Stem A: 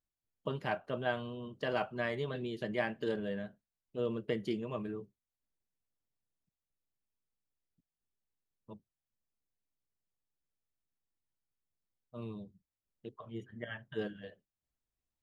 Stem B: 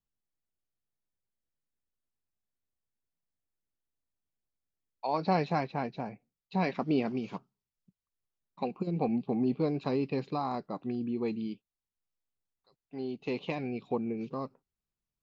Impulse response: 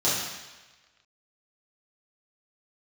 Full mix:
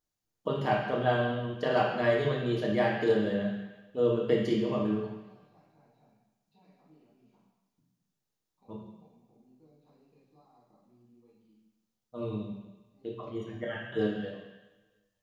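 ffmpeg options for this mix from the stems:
-filter_complex "[0:a]volume=1dB,asplit=3[link_01][link_02][link_03];[link_02]volume=-9.5dB[link_04];[1:a]acompressor=threshold=-39dB:ratio=6,volume=-15.5dB,asplit=2[link_05][link_06];[link_06]volume=-20.5dB[link_07];[link_03]apad=whole_len=671375[link_08];[link_05][link_08]sidechaingate=range=-33dB:threshold=-55dB:ratio=16:detection=peak[link_09];[2:a]atrim=start_sample=2205[link_10];[link_04][link_07]amix=inputs=2:normalize=0[link_11];[link_11][link_10]afir=irnorm=-1:irlink=0[link_12];[link_01][link_09][link_12]amix=inputs=3:normalize=0"

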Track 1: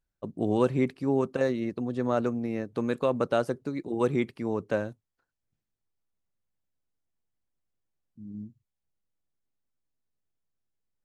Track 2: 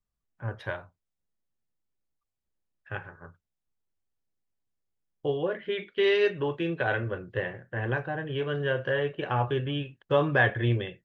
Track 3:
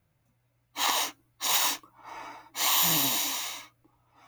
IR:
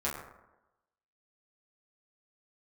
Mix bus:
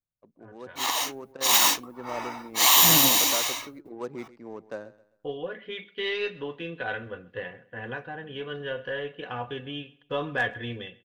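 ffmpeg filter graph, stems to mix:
-filter_complex "[0:a]highpass=frequency=440:poles=1,highshelf=frequency=4100:width_type=q:width=3:gain=6.5,adynamicsmooth=sensitivity=5:basefreq=1200,volume=-17dB,asplit=2[link_01][link_02];[link_02]volume=-18dB[link_03];[1:a]adynamicequalizer=threshold=0.00447:dfrequency=3700:dqfactor=0.9:tfrequency=3700:tqfactor=0.9:attack=5:release=100:ratio=0.375:range=3:mode=boostabove:tftype=bell,aecho=1:1:4.1:0.53,aeval=exprs='0.335*(cos(1*acos(clip(val(0)/0.335,-1,1)))-cos(1*PI/2))+0.00266*(cos(6*acos(clip(val(0)/0.335,-1,1)))-cos(6*PI/2))':channel_layout=same,volume=-17.5dB,asplit=3[link_04][link_05][link_06];[link_05]volume=-22.5dB[link_07];[2:a]agate=range=-24dB:threshold=-60dB:ratio=16:detection=peak,volume=-3.5dB[link_08];[link_06]apad=whole_len=486865[link_09];[link_01][link_09]sidechaincompress=threshold=-56dB:ratio=8:attack=47:release=101[link_10];[link_03][link_07]amix=inputs=2:normalize=0,aecho=0:1:131|262|393|524|655:1|0.33|0.109|0.0359|0.0119[link_11];[link_10][link_04][link_08][link_11]amix=inputs=4:normalize=0,dynaudnorm=framelen=840:gausssize=3:maxgain=11dB"

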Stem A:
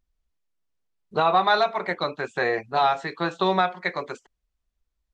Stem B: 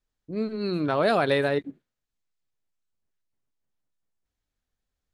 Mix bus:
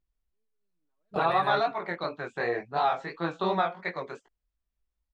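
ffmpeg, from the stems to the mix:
ffmpeg -i stem1.wav -i stem2.wav -filter_complex "[0:a]flanger=delay=17:depth=7.3:speed=2.8,volume=-2dB,asplit=2[link_01][link_02];[1:a]asplit=2[link_03][link_04];[link_04]adelay=5.5,afreqshift=0.62[link_05];[link_03][link_05]amix=inputs=2:normalize=1,volume=-3.5dB[link_06];[link_02]apad=whole_len=226756[link_07];[link_06][link_07]sidechaingate=range=-55dB:threshold=-46dB:ratio=16:detection=peak[link_08];[link_01][link_08]amix=inputs=2:normalize=0,highshelf=frequency=4600:gain=-9" out.wav

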